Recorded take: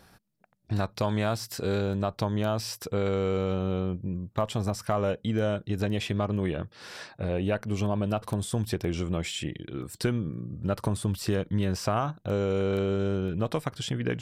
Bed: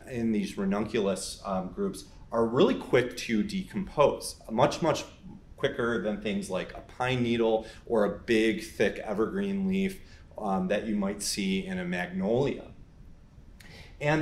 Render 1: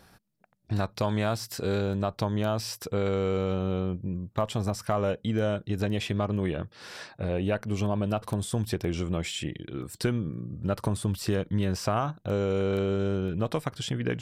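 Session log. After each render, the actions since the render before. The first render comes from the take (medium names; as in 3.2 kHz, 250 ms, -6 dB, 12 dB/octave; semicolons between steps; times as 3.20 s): no audible change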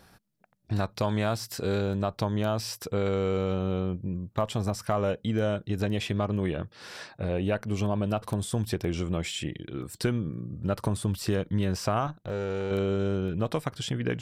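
12.07–12.71 s: valve stage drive 26 dB, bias 0.65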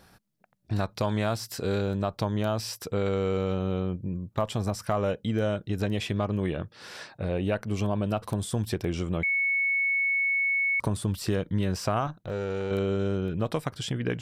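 9.23–10.80 s: bleep 2.21 kHz -22.5 dBFS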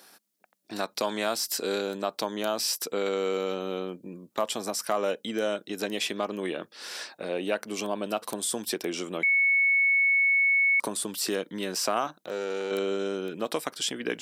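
high-pass 250 Hz 24 dB/octave; treble shelf 3.3 kHz +10.5 dB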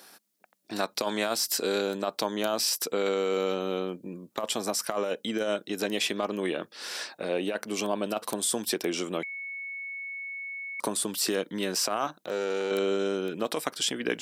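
compressor with a negative ratio -28 dBFS, ratio -0.5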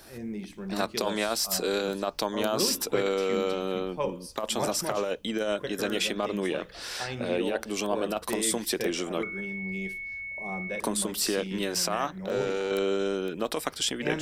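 add bed -8 dB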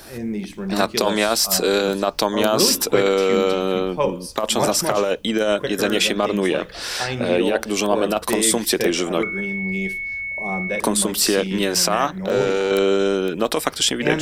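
trim +9.5 dB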